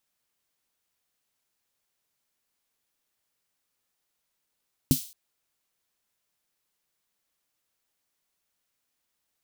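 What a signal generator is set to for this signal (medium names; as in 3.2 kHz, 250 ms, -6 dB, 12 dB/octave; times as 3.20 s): snare drum length 0.22 s, tones 150 Hz, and 260 Hz, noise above 3.4 kHz, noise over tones -10.5 dB, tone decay 0.10 s, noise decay 0.43 s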